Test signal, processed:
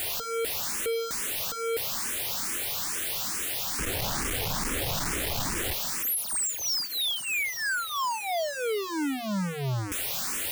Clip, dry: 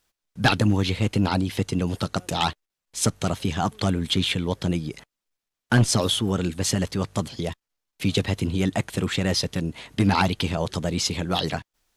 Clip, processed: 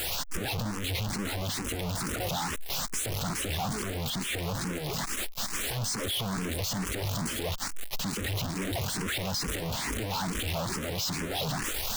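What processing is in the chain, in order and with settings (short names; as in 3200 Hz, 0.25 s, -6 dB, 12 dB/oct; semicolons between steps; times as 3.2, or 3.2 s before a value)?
infinite clipping; endless phaser +2.3 Hz; gain -4 dB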